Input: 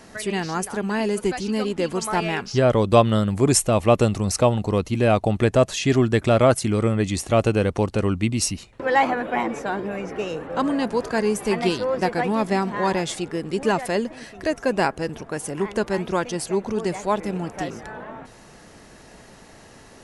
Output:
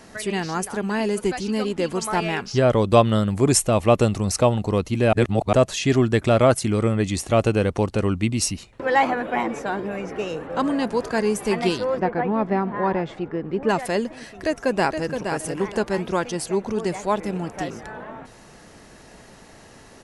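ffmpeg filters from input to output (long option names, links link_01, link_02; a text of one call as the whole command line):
ffmpeg -i in.wav -filter_complex "[0:a]asplit=3[link_01][link_02][link_03];[link_01]afade=type=out:start_time=11.98:duration=0.02[link_04];[link_02]lowpass=1700,afade=type=in:start_time=11.98:duration=0.02,afade=type=out:start_time=13.68:duration=0.02[link_05];[link_03]afade=type=in:start_time=13.68:duration=0.02[link_06];[link_04][link_05][link_06]amix=inputs=3:normalize=0,asplit=2[link_07][link_08];[link_08]afade=type=in:start_time=14.3:duration=0.01,afade=type=out:start_time=15.22:duration=0.01,aecho=0:1:470|940|1410:0.473151|0.118288|0.029572[link_09];[link_07][link_09]amix=inputs=2:normalize=0,asplit=3[link_10][link_11][link_12];[link_10]atrim=end=5.132[link_13];[link_11]atrim=start=5.128:end=5.532,asetpts=PTS-STARTPTS,areverse[link_14];[link_12]atrim=start=5.528[link_15];[link_13][link_14]acrossfade=duration=0.004:curve1=hsin:curve2=hsin[link_16];[link_16][link_15]acrossfade=duration=0.004:curve1=hsin:curve2=hsin" out.wav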